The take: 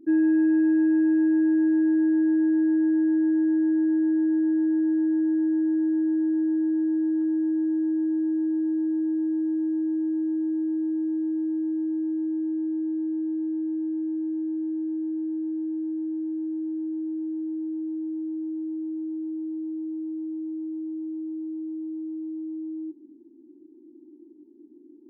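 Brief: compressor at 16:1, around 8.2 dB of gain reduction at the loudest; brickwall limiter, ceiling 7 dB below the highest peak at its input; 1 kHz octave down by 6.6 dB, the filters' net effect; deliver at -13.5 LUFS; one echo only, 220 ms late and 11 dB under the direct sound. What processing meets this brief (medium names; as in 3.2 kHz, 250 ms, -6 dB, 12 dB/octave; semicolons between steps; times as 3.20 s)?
peaking EQ 1 kHz -7.5 dB; compression 16:1, threshold -28 dBFS; peak limiter -29.5 dBFS; delay 220 ms -11 dB; trim +21.5 dB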